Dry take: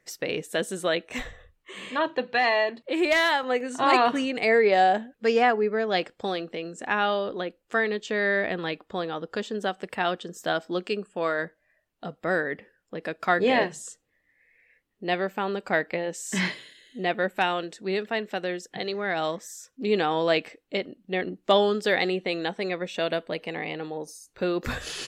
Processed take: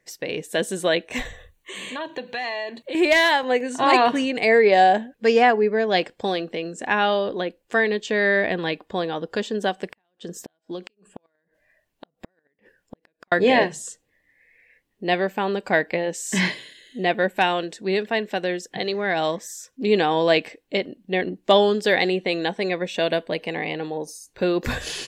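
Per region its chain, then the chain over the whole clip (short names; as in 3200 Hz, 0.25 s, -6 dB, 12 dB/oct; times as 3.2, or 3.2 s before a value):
1.25–2.95 high shelf 4200 Hz +9 dB + compressor 2.5:1, threshold -36 dBFS + Butterworth band-stop 5100 Hz, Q 6.1
9.92–13.32 compressor 20:1, threshold -32 dBFS + flipped gate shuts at -28 dBFS, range -40 dB
whole clip: notch 1300 Hz, Q 5.4; AGC gain up to 5 dB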